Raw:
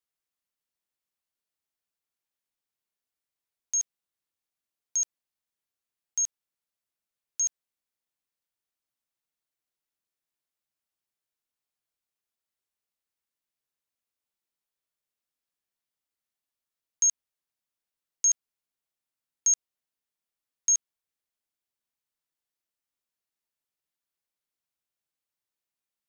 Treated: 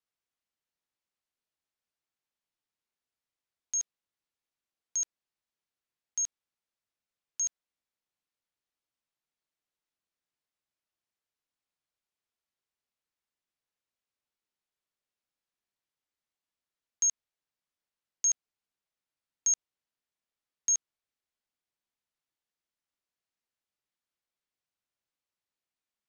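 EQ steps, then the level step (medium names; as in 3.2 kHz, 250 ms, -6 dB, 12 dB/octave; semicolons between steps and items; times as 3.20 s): distance through air 54 m; 0.0 dB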